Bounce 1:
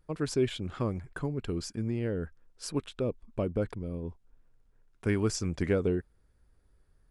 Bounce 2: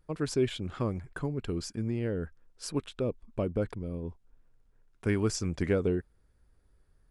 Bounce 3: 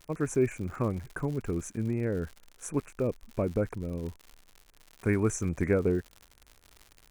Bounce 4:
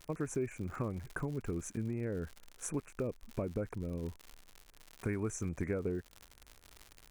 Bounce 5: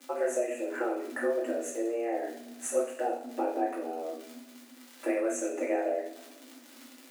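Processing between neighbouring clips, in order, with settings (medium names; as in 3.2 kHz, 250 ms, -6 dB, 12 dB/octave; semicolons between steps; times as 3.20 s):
no audible change
Chebyshev band-stop 2.5–6 kHz, order 4; crackle 130 per s -41 dBFS; trim +2.5 dB
compression 3:1, threshold -35 dBFS, peak gain reduction 11 dB
two-slope reverb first 0.47 s, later 1.6 s, DRR -5 dB; frequency shift +230 Hz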